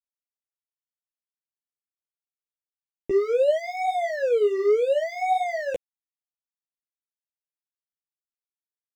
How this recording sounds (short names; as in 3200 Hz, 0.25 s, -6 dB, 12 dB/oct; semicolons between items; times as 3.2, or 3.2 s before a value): phasing stages 6, 2.1 Hz, lowest notch 800–1600 Hz; a quantiser's noise floor 12-bit, dither none; a shimmering, thickened sound